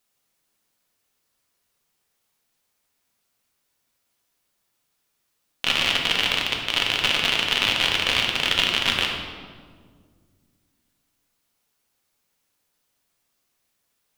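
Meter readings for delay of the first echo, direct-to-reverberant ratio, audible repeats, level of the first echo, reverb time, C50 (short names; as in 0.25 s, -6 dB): none, 0.0 dB, none, none, 1.8 s, 3.0 dB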